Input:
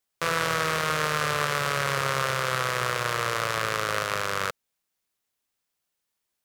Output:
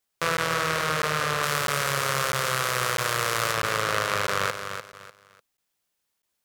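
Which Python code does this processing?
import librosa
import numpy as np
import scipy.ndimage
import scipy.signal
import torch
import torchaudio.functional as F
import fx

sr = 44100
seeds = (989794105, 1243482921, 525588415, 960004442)

y = fx.high_shelf(x, sr, hz=5400.0, db=8.5, at=(1.43, 3.52))
y = fx.rider(y, sr, range_db=10, speed_s=0.5)
y = fx.echo_feedback(y, sr, ms=298, feedback_pct=28, wet_db=-8.0)
y = fx.buffer_crackle(y, sr, first_s=0.37, period_s=0.65, block=512, kind='zero')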